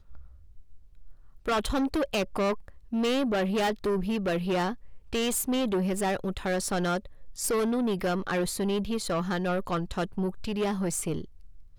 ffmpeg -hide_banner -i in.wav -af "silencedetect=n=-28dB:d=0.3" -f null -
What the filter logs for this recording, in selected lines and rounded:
silence_start: 0.00
silence_end: 1.48 | silence_duration: 1.48
silence_start: 2.54
silence_end: 2.93 | silence_duration: 0.39
silence_start: 4.71
silence_end: 5.13 | silence_duration: 0.41
silence_start: 6.97
silence_end: 7.39 | silence_duration: 0.42
silence_start: 11.21
silence_end: 11.78 | silence_duration: 0.58